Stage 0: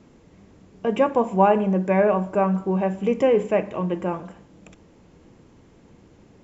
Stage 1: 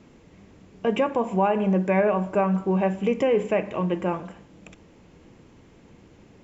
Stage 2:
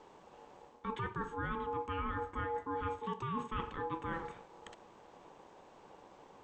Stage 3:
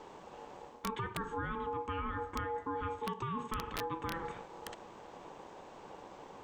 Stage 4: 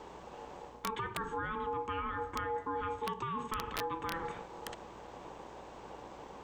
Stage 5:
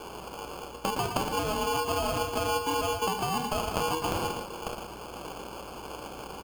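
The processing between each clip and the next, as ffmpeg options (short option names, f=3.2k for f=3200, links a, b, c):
-af "equalizer=f=2.5k:w=1.3:g=4,alimiter=limit=-12.5dB:level=0:latency=1:release=146"
-af "areverse,acompressor=threshold=-30dB:ratio=6,areverse,aeval=exprs='val(0)*sin(2*PI*660*n/s)':c=same,volume=-3dB"
-af "acompressor=threshold=-40dB:ratio=12,aeval=exprs='(mod(42.2*val(0)+1,2)-1)/42.2':c=same,volume=6.5dB"
-filter_complex "[0:a]acrossover=split=410|2000[a][b][c];[a]alimiter=level_in=18dB:limit=-24dB:level=0:latency=1,volume=-18dB[d];[d][b][c]amix=inputs=3:normalize=0,aeval=exprs='val(0)+0.000708*(sin(2*PI*60*n/s)+sin(2*PI*2*60*n/s)/2+sin(2*PI*3*60*n/s)/3+sin(2*PI*4*60*n/s)/4+sin(2*PI*5*60*n/s)/5)':c=same,volume=2dB"
-af "acrusher=samples=23:mix=1:aa=0.000001,aecho=1:1:114:0.398,volume=7.5dB"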